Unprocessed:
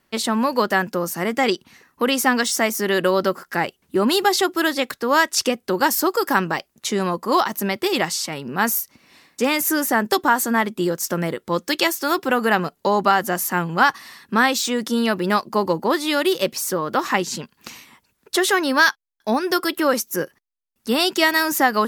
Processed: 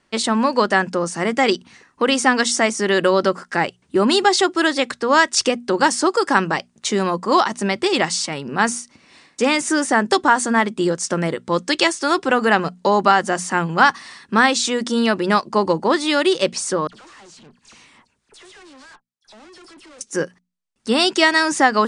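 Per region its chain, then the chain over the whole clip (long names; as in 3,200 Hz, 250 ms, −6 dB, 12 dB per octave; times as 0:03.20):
0:16.87–0:20.01: all-pass dispersion lows, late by 61 ms, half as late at 2,700 Hz + downward compressor 1.5 to 1, threshold −45 dBFS + tube saturation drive 46 dB, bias 0.55
whole clip: Butterworth low-pass 9,600 Hz 96 dB per octave; mains-hum notches 60/120/180/240 Hz; level +2.5 dB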